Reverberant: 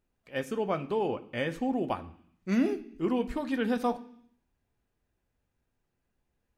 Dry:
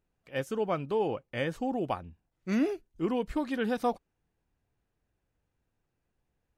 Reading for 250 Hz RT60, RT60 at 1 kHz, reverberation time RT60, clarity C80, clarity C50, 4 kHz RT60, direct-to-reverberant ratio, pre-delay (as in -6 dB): 0.85 s, 0.65 s, 0.65 s, 19.0 dB, 16.0 dB, 0.80 s, 8.0 dB, 3 ms